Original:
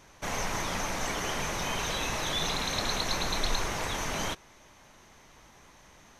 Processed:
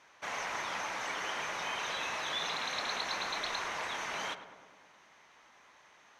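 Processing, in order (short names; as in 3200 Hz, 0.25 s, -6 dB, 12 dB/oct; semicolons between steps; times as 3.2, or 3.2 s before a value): band-pass 1700 Hz, Q 0.63; darkening echo 0.105 s, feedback 69%, low-pass 1700 Hz, level -10 dB; gain -1.5 dB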